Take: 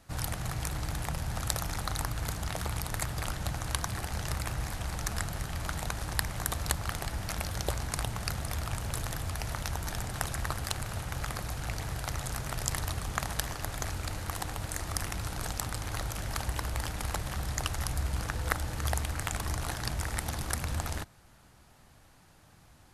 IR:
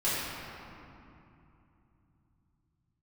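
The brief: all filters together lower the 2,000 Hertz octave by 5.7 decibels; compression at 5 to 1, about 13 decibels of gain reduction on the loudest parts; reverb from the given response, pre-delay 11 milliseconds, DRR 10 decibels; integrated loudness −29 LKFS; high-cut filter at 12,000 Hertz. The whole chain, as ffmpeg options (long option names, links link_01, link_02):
-filter_complex "[0:a]lowpass=12000,equalizer=frequency=2000:width_type=o:gain=-7.5,acompressor=threshold=-42dB:ratio=5,asplit=2[link_01][link_02];[1:a]atrim=start_sample=2205,adelay=11[link_03];[link_02][link_03]afir=irnorm=-1:irlink=0,volume=-21dB[link_04];[link_01][link_04]amix=inputs=2:normalize=0,volume=16.5dB"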